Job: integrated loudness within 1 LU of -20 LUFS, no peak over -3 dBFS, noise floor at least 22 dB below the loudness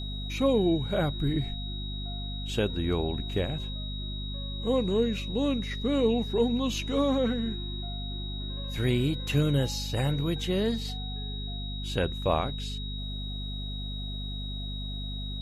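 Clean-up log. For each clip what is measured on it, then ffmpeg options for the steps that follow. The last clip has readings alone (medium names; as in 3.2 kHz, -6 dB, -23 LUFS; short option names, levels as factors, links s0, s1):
hum 50 Hz; highest harmonic 250 Hz; hum level -33 dBFS; steady tone 3.8 kHz; tone level -39 dBFS; loudness -30.0 LUFS; peak level -12.5 dBFS; loudness target -20.0 LUFS
-> -af "bandreject=f=50:t=h:w=6,bandreject=f=100:t=h:w=6,bandreject=f=150:t=h:w=6,bandreject=f=200:t=h:w=6,bandreject=f=250:t=h:w=6"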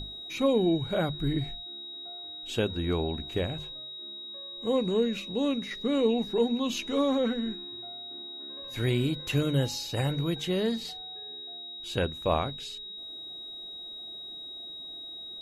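hum not found; steady tone 3.8 kHz; tone level -39 dBFS
-> -af "bandreject=f=3800:w=30"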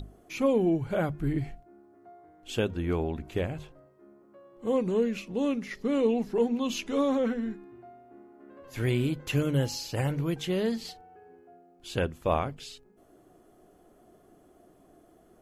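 steady tone not found; loudness -29.5 LUFS; peak level -14.5 dBFS; loudness target -20.0 LUFS
-> -af "volume=2.99"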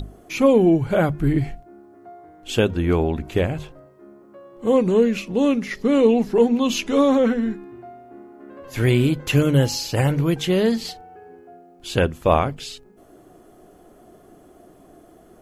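loudness -20.0 LUFS; peak level -5.0 dBFS; noise floor -51 dBFS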